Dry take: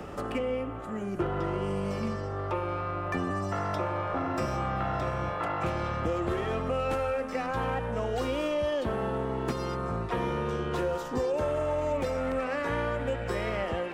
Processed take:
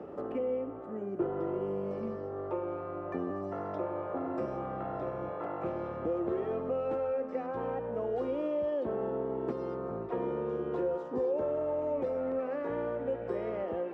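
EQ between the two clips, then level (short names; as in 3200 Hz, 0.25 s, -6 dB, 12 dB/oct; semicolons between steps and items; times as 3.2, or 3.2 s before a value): band-pass 410 Hz, Q 1.2; 0.0 dB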